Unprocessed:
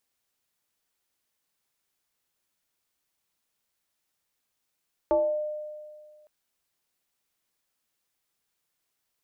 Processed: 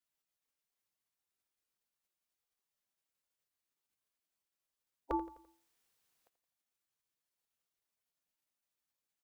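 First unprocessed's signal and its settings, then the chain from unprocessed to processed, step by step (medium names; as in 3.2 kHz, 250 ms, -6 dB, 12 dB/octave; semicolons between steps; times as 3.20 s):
FM tone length 1.16 s, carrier 605 Hz, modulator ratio 0.45, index 0.93, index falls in 0.53 s exponential, decay 1.89 s, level -18 dB
spectral gate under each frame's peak -10 dB weak; feedback delay 85 ms, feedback 47%, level -15 dB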